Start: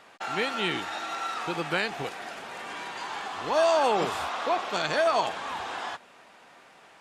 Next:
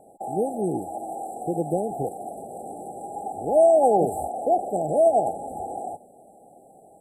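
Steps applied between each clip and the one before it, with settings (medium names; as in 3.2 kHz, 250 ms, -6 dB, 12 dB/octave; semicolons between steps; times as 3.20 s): FFT band-reject 850–7600 Hz; trim +7 dB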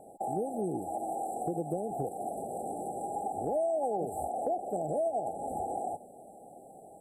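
compression 4:1, threshold -31 dBFS, peak gain reduction 14.5 dB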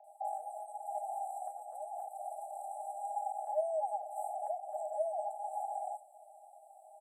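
rippled Chebyshev high-pass 600 Hz, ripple 9 dB; bands offset in time lows, highs 40 ms, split 2.4 kHz; trim +1.5 dB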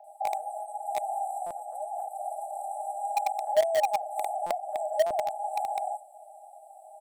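in parallel at -9 dB: bit crusher 5-bit; on the sum: buffer glitch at 1.46/4.46/5.06 s, samples 256, times 7; trim +7.5 dB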